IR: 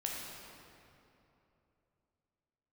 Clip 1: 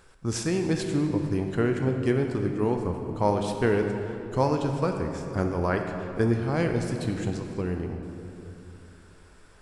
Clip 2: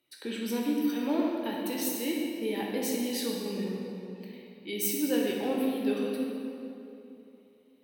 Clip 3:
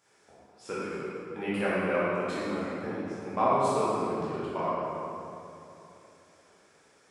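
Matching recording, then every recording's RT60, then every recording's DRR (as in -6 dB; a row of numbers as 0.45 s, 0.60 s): 2; 3.0 s, 3.0 s, 3.0 s; 3.5 dB, -2.5 dB, -10.5 dB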